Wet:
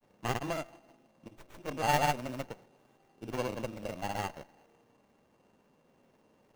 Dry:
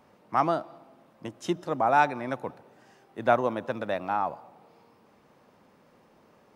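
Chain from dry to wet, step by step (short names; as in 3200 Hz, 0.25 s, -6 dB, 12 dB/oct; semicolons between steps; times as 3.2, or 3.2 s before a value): FFT order left unsorted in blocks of 16 samples; grains, pitch spread up and down by 0 st; running maximum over 9 samples; gain -5 dB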